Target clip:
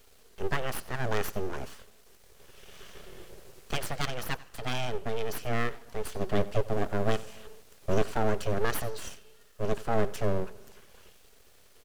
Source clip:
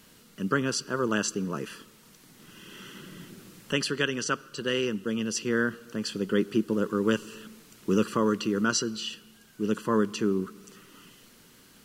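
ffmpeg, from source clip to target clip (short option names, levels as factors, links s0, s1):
-af "lowshelf=f=130:t=q:w=3:g=-13.5,aeval=exprs='abs(val(0))':c=same,aecho=1:1:91:0.1,volume=0.668"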